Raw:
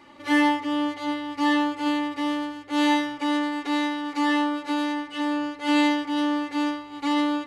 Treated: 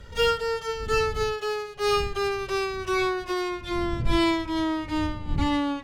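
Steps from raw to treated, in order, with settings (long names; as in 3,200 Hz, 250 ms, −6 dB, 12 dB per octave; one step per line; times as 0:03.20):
gliding playback speed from 161% → 95%
wind on the microphone 81 Hz −31 dBFS
level −2 dB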